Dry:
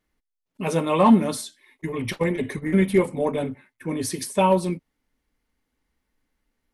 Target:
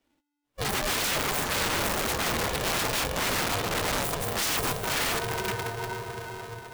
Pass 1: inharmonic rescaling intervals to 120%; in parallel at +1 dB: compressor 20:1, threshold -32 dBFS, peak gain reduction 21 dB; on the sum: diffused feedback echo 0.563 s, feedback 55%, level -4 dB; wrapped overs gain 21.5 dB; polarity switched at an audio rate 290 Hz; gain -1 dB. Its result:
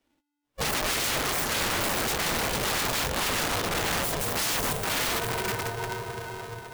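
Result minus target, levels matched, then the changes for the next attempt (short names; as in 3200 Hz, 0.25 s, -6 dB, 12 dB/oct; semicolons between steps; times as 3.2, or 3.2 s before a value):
compressor: peak gain reduction -9.5 dB
change: compressor 20:1, threshold -42 dBFS, peak gain reduction 30.5 dB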